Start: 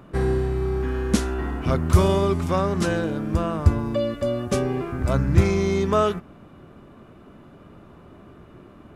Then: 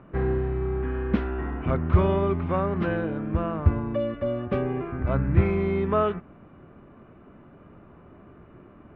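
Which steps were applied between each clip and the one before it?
inverse Chebyshev low-pass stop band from 8 kHz, stop band 60 dB; trim -3 dB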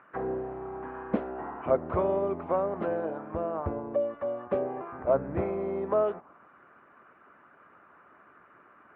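harmonic-percussive split percussive +8 dB; auto-wah 600–1600 Hz, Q 2.1, down, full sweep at -19 dBFS; trim +1 dB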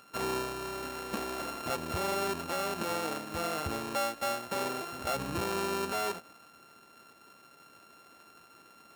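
sorted samples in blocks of 32 samples; peak limiter -25 dBFS, peak gain reduction 11.5 dB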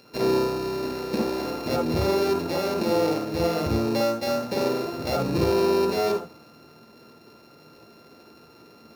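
reverberation, pre-delay 49 ms, DRR 1 dB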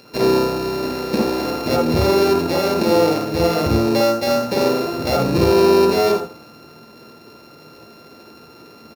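delay 82 ms -14 dB; trim +7 dB

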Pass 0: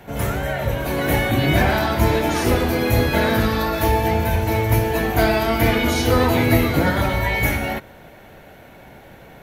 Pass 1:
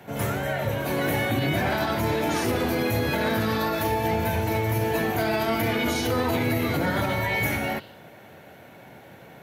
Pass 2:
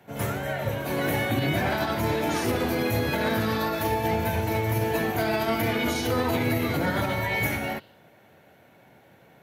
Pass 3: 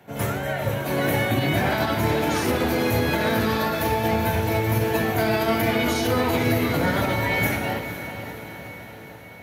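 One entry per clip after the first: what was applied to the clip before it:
spectral replace 7.75–7.99 s, 2.6–5.2 kHz both; high-pass 91 Hz 24 dB/octave; peak limiter -12.5 dBFS, peak gain reduction 8.5 dB; trim -3 dB
upward expansion 1.5:1, over -39 dBFS
echo that smears into a reverb 482 ms, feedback 61%, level -10.5 dB; trim +3 dB

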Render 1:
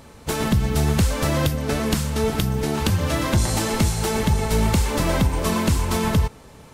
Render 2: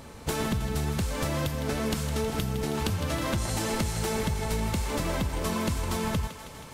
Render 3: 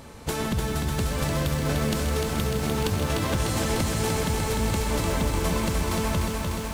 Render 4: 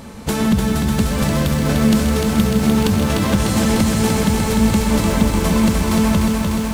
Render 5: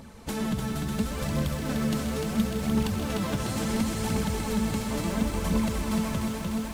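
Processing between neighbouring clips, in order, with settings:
compression 6:1, threshold -26 dBFS, peak gain reduction 11.5 dB; thinning echo 159 ms, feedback 76%, high-pass 420 Hz, level -10.5 dB
bit-crushed delay 299 ms, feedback 80%, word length 8-bit, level -4 dB; trim +1 dB
peaking EQ 210 Hz +13 dB 0.28 oct; trim +6.5 dB
flange 0.72 Hz, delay 0 ms, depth 8.4 ms, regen +40%; on a send at -13 dB: reverberation RT60 0.25 s, pre-delay 153 ms; on the sum: trim -8 dB

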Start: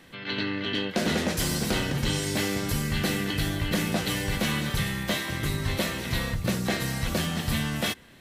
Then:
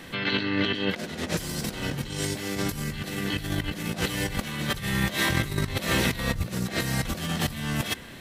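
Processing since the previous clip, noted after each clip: compressor with a negative ratio -32 dBFS, ratio -0.5; trim +4.5 dB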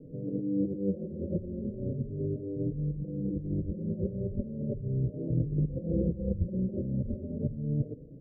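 rippled Chebyshev low-pass 580 Hz, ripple 3 dB; endless flanger 4.3 ms +0.38 Hz; trim +2.5 dB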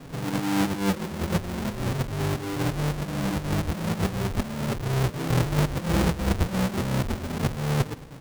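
square wave that keeps the level; trim +2 dB

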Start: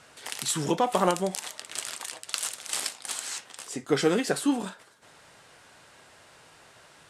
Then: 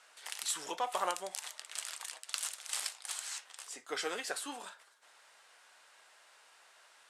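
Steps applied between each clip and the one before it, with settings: high-pass 760 Hz 12 dB/octave; trim -6.5 dB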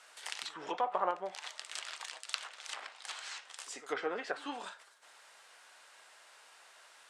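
low-pass that closes with the level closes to 1.3 kHz, closed at -33 dBFS; pre-echo 90 ms -19 dB; trim +3 dB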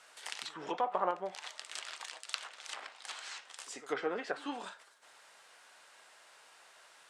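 bass shelf 300 Hz +8 dB; trim -1 dB

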